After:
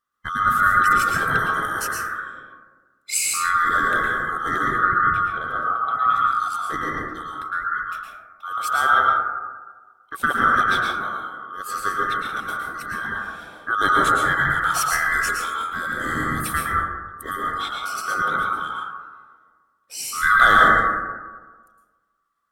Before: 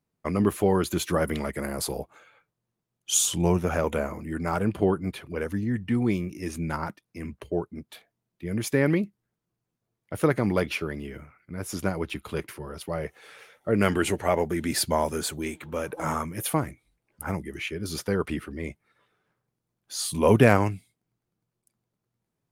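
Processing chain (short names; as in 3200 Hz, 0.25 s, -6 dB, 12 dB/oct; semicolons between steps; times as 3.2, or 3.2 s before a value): band-swap scrambler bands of 1000 Hz; 4.72–6.16 tone controls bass +5 dB, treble -14 dB; plate-style reverb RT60 1.4 s, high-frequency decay 0.25×, pre-delay 0.1 s, DRR -3.5 dB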